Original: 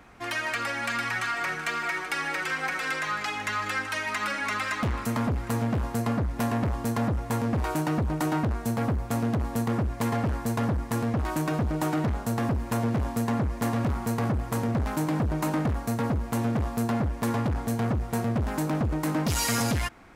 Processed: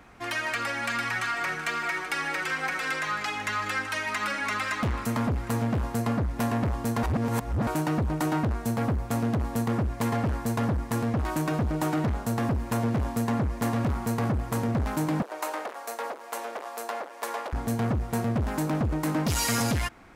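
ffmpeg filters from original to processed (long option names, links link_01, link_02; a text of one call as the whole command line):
ffmpeg -i in.wav -filter_complex "[0:a]asettb=1/sr,asplit=3[link_01][link_02][link_03];[link_01]atrim=end=15.224[link_04];[link_02]atrim=start=15.22:end=17.53,asetpts=PTS-STARTPTS,afade=type=in:duration=0.004:curve=qsin,afade=type=out:start_time=2.306:duration=0.004:curve=qsin,highpass=frequency=480:width=0.5412,highpass=frequency=480:width=1.3066[link_05];[link_03]atrim=start=17.526[link_06];[link_04][link_05]acrossfade=duration=0.004:curve1=hsin:curve2=qsin[link_07];[link_07][link_06]acrossfade=duration=0.004:curve1=qsin:curve2=hsin,asplit=3[link_08][link_09][link_10];[link_08]atrim=end=7.032[link_11];[link_09]atrim=start=7.028:end=7.672,asetpts=PTS-STARTPTS,areverse[link_12];[link_10]atrim=start=7.668[link_13];[link_11][link_12]acrossfade=duration=0.004:curve1=hsin:curve2=hsin[link_14];[link_14][link_13]acrossfade=duration=0.004:curve1=hsin:curve2=hsin" out.wav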